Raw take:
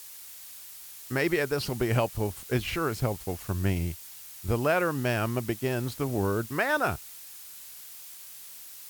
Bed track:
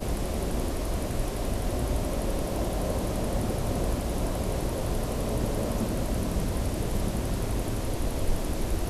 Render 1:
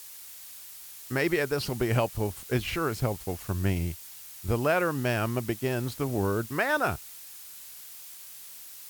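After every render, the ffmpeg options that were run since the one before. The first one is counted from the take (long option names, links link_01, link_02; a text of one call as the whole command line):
ffmpeg -i in.wav -af anull out.wav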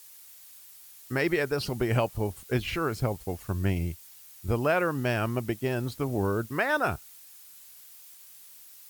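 ffmpeg -i in.wav -af "afftdn=noise_reduction=7:noise_floor=-46" out.wav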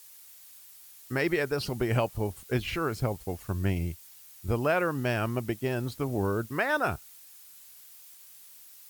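ffmpeg -i in.wav -af "volume=-1dB" out.wav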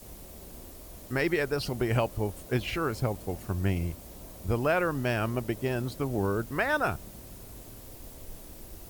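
ffmpeg -i in.wav -i bed.wav -filter_complex "[1:a]volume=-18.5dB[link_01];[0:a][link_01]amix=inputs=2:normalize=0" out.wav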